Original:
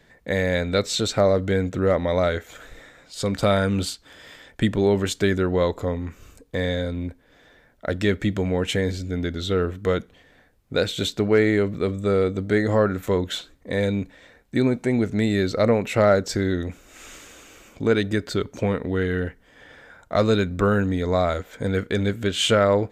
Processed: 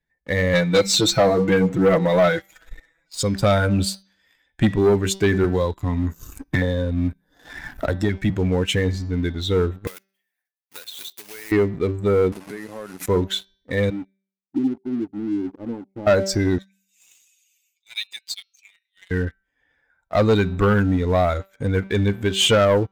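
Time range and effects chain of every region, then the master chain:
0:00.53–0:03.23: comb filter 6.1 ms, depth 94% + hum removal 68.28 Hz, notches 7
0:05.44–0:08.30: hum removal 163.2 Hz, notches 3 + auto-filter notch square 1.7 Hz 500–2,400 Hz + multiband upward and downward compressor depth 100%
0:09.87–0:11.52: one scale factor per block 3 bits + high-pass filter 1,300 Hz 6 dB per octave + downward compressor, threshold −31 dBFS
0:12.32–0:13.06: linear delta modulator 64 kbit/s, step −25 dBFS + downward compressor 12 to 1, threshold −27 dBFS + high-pass filter 140 Hz 24 dB per octave
0:13.90–0:16.07: formant resonators in series u + downward expander −55 dBFS
0:16.58–0:19.11: inverse Chebyshev high-pass filter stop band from 760 Hz, stop band 60 dB + comb filter 5.9 ms, depth 84%
whole clip: spectral dynamics exaggerated over time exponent 1.5; hum removal 193.7 Hz, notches 32; leveller curve on the samples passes 2

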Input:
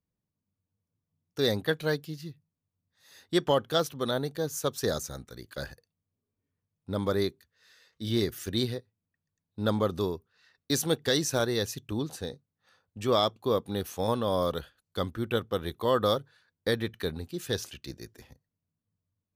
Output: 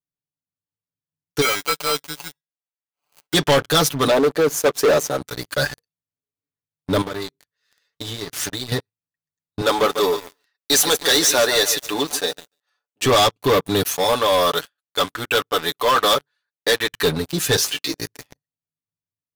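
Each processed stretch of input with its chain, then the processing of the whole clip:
0:01.41–0:03.34: sample-rate reduction 1,800 Hz + high-pass filter 1,400 Hz 6 dB per octave
0:04.07–0:05.21: high-pass filter 350 Hz + tilt shelving filter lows +9 dB, about 1,300 Hz
0:07.01–0:08.72: running median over 3 samples + downward compressor 20 to 1, threshold −38 dBFS
0:09.61–0:13.06: high-pass filter 440 Hz + feedback echo at a low word length 145 ms, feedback 35%, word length 8 bits, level −13.5 dB
0:13.83–0:16.93: high-pass filter 670 Hz 6 dB per octave + one half of a high-frequency compander decoder only
0:17.56–0:17.98: high-pass filter 260 Hz + double-tracking delay 18 ms −6 dB
whole clip: low-shelf EQ 490 Hz −7 dB; comb filter 6.9 ms, depth 80%; leveller curve on the samples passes 5

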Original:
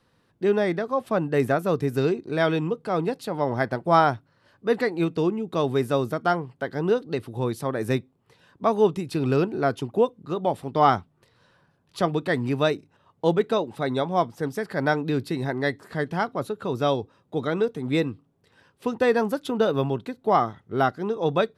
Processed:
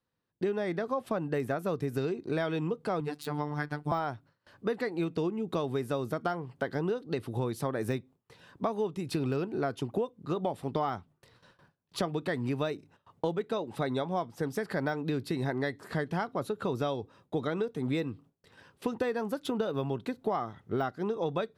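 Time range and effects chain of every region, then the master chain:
0:03.00–0:03.92: parametric band 570 Hz −12.5 dB 0.52 octaves + phases set to zero 148 Hz
whole clip: de-essing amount 75%; noise gate with hold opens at −50 dBFS; downward compressor 10 to 1, threshold −29 dBFS; level +1.5 dB

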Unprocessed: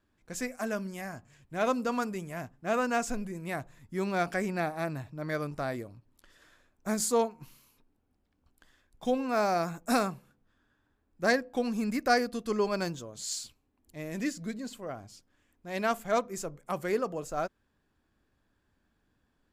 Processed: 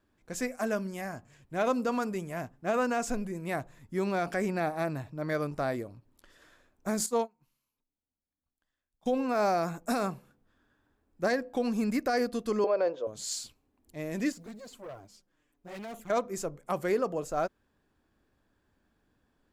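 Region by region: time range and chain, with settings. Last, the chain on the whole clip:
0:07.06–0:09.06: parametric band 390 Hz −4.5 dB 0.61 octaves + expander for the loud parts 2.5 to 1, over −39 dBFS
0:12.64–0:13.07: high-pass with resonance 510 Hz, resonance Q 5.5 + high-frequency loss of the air 280 metres
0:14.32–0:16.10: floating-point word with a short mantissa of 4 bits + flanger swept by the level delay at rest 7.3 ms, full sweep at −26.5 dBFS + tube saturation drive 41 dB, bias 0.5
whole clip: parametric band 490 Hz +3.5 dB 2.2 octaves; brickwall limiter −19 dBFS

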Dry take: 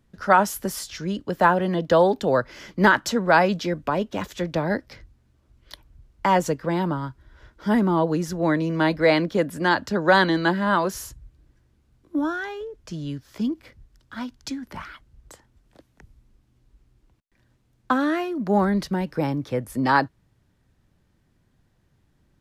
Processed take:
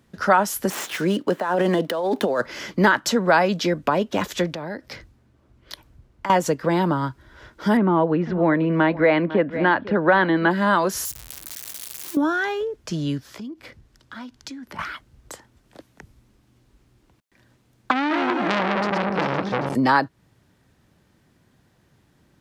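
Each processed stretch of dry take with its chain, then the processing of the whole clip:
0:00.70–0:02.46: running median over 9 samples + high-pass filter 220 Hz + compressor whose output falls as the input rises −26 dBFS
0:04.53–0:06.30: downward compressor 4 to 1, threshold −38 dBFS + one half of a high-frequency compander decoder only
0:07.77–0:10.51: low-pass filter 2,800 Hz 24 dB per octave + single-tap delay 500 ms −18 dB
0:11.05–0:12.17: spike at every zero crossing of −25.5 dBFS + downward compressor 4 to 1, threshold −36 dBFS
0:13.28–0:14.79: high-shelf EQ 11,000 Hz −6.5 dB + downward compressor 3 to 1, threshold −45 dBFS
0:17.91–0:19.75: feedback delay that plays each chunk backwards 198 ms, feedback 61%, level −4 dB + low-pass filter 5,400 Hz + saturating transformer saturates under 2,200 Hz
whole clip: high-pass filter 160 Hz 6 dB per octave; downward compressor 2 to 1, threshold −28 dBFS; level +8.5 dB

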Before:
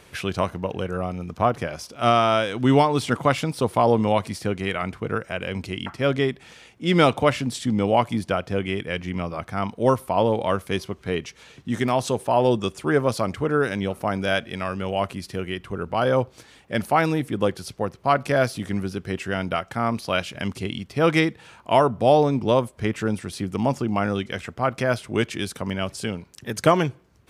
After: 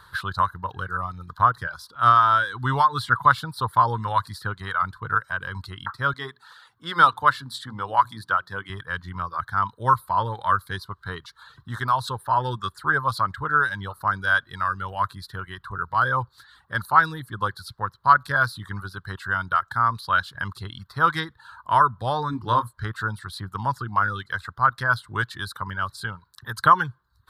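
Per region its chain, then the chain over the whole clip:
0:06.13–0:08.70: high-pass filter 87 Hz + low-shelf EQ 140 Hz −9.5 dB + mains-hum notches 60/120/180/240/300/360/420 Hz
0:22.30–0:22.73: parametric band 290 Hz +12 dB 0.27 octaves + double-tracking delay 26 ms −7 dB
whole clip: reverb reduction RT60 0.55 s; drawn EQ curve 120 Hz 0 dB, 230 Hz −15 dB, 700 Hz −12 dB, 1,000 Hz +8 dB, 1,600 Hz +9 dB, 2,400 Hz −20 dB, 4,000 Hz +6 dB, 6,000 Hz −13 dB, 13,000 Hz 0 dB

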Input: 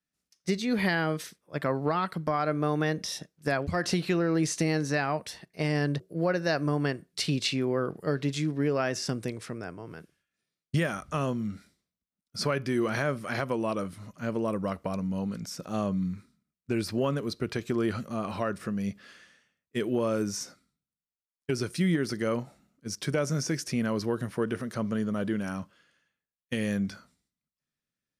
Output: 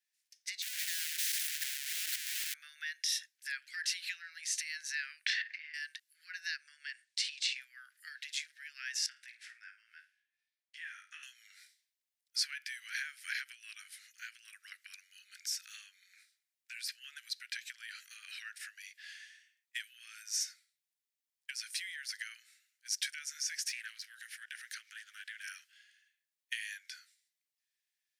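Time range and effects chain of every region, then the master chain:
0:00.62–0:02.54: sign of each sample alone + parametric band 910 Hz −9.5 dB 0.71 octaves + every bin compressed towards the loudest bin 2 to 1
0:05.26–0:05.74: head-to-tape spacing loss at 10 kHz 45 dB + double-tracking delay 34 ms −7 dB + envelope flattener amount 100%
0:06.56–0:07.56: low-pass filter 8,800 Hz 24 dB per octave + downward compressor 2 to 1, threshold −36 dBFS
0:09.06–0:11.23: low-pass filter 1,200 Hz 6 dB per octave + double-tracking delay 18 ms −6 dB + flutter between parallel walls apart 8.8 metres, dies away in 0.29 s
0:23.69–0:25.47: de-essing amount 90% + low-shelf EQ 140 Hz −6 dB + highs frequency-modulated by the lows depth 0.11 ms
whole clip: downward compressor, threshold −31 dBFS; Butterworth high-pass 1,600 Hz 72 dB per octave; level +3.5 dB

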